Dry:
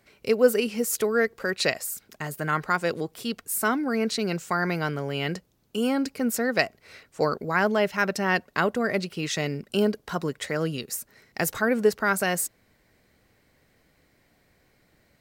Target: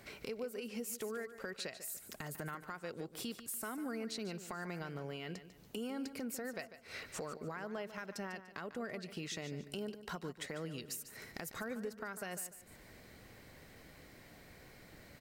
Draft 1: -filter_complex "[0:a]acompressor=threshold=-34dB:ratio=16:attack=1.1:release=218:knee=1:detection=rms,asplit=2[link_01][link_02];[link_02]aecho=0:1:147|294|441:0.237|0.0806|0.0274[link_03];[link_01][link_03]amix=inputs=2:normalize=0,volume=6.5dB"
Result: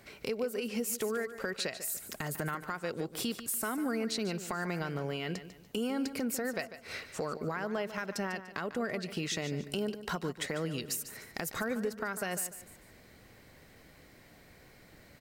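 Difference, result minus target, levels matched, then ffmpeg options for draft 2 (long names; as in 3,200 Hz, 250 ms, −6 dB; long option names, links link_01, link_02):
downward compressor: peak gain reduction −8 dB
-filter_complex "[0:a]acompressor=threshold=-42.5dB:ratio=16:attack=1.1:release=218:knee=1:detection=rms,asplit=2[link_01][link_02];[link_02]aecho=0:1:147|294|441:0.237|0.0806|0.0274[link_03];[link_01][link_03]amix=inputs=2:normalize=0,volume=6.5dB"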